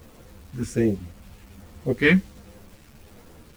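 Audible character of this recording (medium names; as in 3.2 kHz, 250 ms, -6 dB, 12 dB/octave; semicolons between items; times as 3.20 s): phasing stages 2, 1.3 Hz, lowest notch 610–1600 Hz; a quantiser's noise floor 10-bit, dither none; a shimmering, thickened sound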